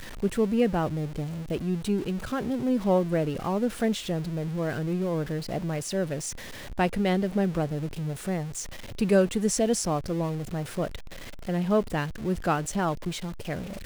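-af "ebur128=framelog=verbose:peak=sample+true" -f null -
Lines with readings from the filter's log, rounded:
Integrated loudness:
  I:         -28.1 LUFS
  Threshold: -38.3 LUFS
Loudness range:
  LRA:         2.6 LU
  Threshold: -48.2 LUFS
  LRA low:   -29.6 LUFS
  LRA high:  -27.0 LUFS
Sample peak:
  Peak:       -8.6 dBFS
True peak:
  Peak:       -8.6 dBFS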